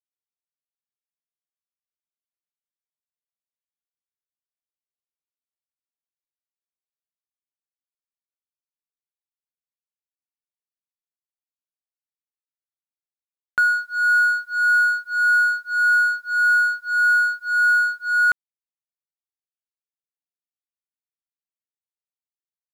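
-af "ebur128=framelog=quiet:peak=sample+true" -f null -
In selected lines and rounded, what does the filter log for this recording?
Integrated loudness:
  I:         -18.2 LUFS
  Threshold: -28.2 LUFS
Loudness range:
  LRA:         9.4 LU
  Threshold: -39.9 LUFS
  LRA low:   -27.1 LUFS
  LRA high:  -17.7 LUFS
Sample peak:
  Peak:      -12.3 dBFS
True peak:
  Peak:      -12.2 dBFS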